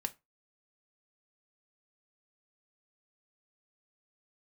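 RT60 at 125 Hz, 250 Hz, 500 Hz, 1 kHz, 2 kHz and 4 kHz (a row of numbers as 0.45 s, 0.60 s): 0.30 s, 0.25 s, 0.20 s, 0.25 s, 0.20 s, 0.15 s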